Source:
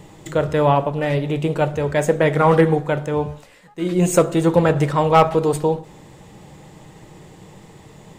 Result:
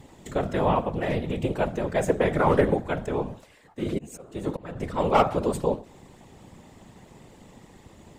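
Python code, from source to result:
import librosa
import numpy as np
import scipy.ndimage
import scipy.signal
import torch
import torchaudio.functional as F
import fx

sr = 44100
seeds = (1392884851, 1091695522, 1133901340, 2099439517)

y = fx.auto_swell(x, sr, attack_ms=611.0, at=(3.82, 5.0))
y = fx.whisperise(y, sr, seeds[0])
y = y * 10.0 ** (-6.5 / 20.0)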